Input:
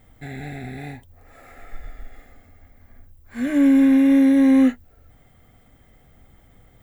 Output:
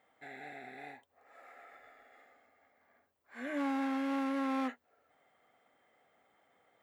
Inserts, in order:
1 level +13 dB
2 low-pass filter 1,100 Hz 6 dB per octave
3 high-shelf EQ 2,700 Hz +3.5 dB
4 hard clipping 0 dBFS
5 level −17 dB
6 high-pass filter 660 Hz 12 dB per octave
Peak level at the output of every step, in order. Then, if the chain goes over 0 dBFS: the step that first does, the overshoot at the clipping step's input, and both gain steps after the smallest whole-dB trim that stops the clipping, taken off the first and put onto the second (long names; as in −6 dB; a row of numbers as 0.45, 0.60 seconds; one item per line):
+5.0, +4.5, +4.5, 0.0, −17.0, −25.5 dBFS
step 1, 4.5 dB
step 1 +8 dB, step 5 −12 dB